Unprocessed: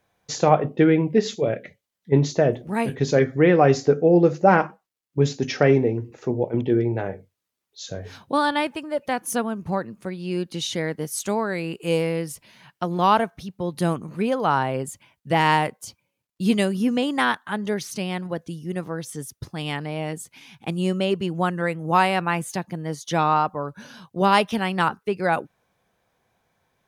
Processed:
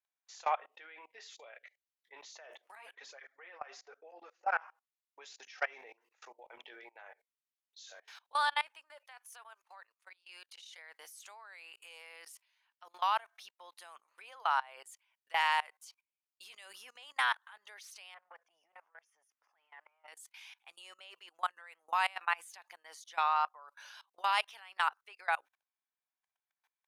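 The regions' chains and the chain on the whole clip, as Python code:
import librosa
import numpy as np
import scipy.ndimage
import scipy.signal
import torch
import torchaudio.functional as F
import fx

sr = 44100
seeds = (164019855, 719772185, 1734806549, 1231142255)

y = fx.chain(x, sr, fx.high_shelf(hz=2900.0, db=-9.0),
    fx.flanger_cancel(hz=1.1, depth_ms=7.1), at=(2.75, 4.62))
y = fx.chain(y, sr, fx.level_steps(step_db=9),
    fx.highpass(hz=290.0, slope=24),
    fx.low_shelf(hz=410.0, db=-9.5), at=(9.03, 10.78))
y = fx.chain(y, sr, fx.transient(attack_db=-9, sustain_db=5),
    fx.moving_average(points=11),
    fx.transformer_sat(knee_hz=560.0), at=(18.14, 20.08))
y = scipy.signal.sosfilt(scipy.signal.butter(4, 850.0, 'highpass', fs=sr, output='sos'), y)
y = fx.peak_eq(y, sr, hz=2600.0, db=3.0, octaves=1.1)
y = fx.level_steps(y, sr, step_db=24)
y = y * librosa.db_to_amplitude(-5.0)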